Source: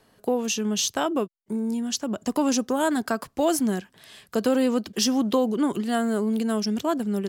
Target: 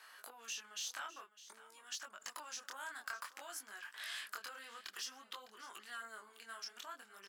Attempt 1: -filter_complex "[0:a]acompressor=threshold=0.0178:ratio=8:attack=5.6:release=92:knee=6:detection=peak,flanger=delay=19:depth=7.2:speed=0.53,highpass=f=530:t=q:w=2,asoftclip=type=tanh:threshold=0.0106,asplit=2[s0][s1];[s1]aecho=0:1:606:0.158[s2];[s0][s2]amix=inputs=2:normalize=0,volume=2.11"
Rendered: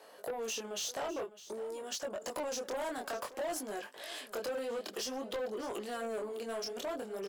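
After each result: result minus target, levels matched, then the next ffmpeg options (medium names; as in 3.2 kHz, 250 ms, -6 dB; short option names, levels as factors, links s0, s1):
500 Hz band +16.5 dB; compression: peak gain reduction -8 dB
-filter_complex "[0:a]acompressor=threshold=0.0178:ratio=8:attack=5.6:release=92:knee=6:detection=peak,flanger=delay=19:depth=7.2:speed=0.53,highpass=f=1400:t=q:w=2,asoftclip=type=tanh:threshold=0.0106,asplit=2[s0][s1];[s1]aecho=0:1:606:0.158[s2];[s0][s2]amix=inputs=2:normalize=0,volume=2.11"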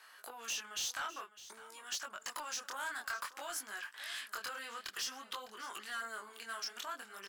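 compression: peak gain reduction -8 dB
-filter_complex "[0:a]acompressor=threshold=0.00631:ratio=8:attack=5.6:release=92:knee=6:detection=peak,flanger=delay=19:depth=7.2:speed=0.53,highpass=f=1400:t=q:w=2,asoftclip=type=tanh:threshold=0.0106,asplit=2[s0][s1];[s1]aecho=0:1:606:0.158[s2];[s0][s2]amix=inputs=2:normalize=0,volume=2.11"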